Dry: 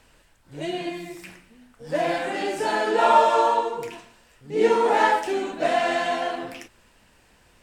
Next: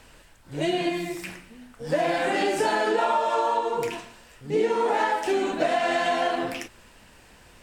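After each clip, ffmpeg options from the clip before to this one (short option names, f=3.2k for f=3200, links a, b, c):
-af "acompressor=threshold=-25dB:ratio=16,volume=5.5dB"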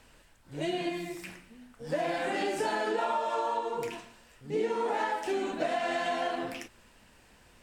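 -af "equalizer=f=230:t=o:w=0.31:g=2.5,volume=-7dB"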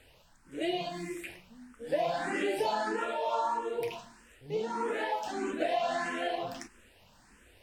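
-filter_complex "[0:a]asplit=2[a][b];[b]afreqshift=1.6[c];[a][c]amix=inputs=2:normalize=1,volume=2dB"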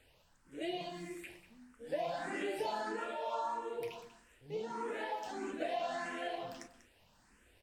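-af "aecho=1:1:192:0.188,volume=-7dB"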